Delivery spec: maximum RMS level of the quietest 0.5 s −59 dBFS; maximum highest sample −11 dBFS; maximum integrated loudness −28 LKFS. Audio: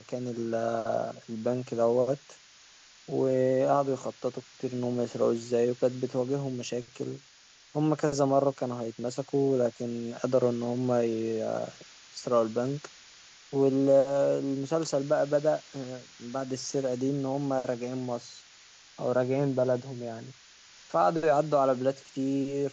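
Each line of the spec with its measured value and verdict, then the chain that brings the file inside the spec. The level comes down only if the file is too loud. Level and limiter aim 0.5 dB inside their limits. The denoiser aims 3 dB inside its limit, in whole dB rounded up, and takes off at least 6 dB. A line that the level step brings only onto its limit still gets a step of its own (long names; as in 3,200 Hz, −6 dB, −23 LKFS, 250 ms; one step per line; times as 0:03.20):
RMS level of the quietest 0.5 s −57 dBFS: out of spec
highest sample −12.5 dBFS: in spec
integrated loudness −29.0 LKFS: in spec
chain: broadband denoise 6 dB, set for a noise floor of −57 dBFS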